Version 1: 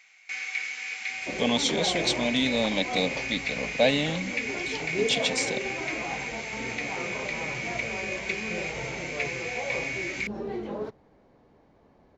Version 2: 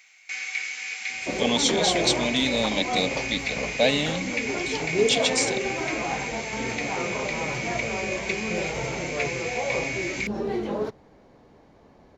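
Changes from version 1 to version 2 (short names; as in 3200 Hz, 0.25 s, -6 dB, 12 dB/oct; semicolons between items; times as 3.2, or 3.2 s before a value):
second sound +5.5 dB; master: add high shelf 5200 Hz +9 dB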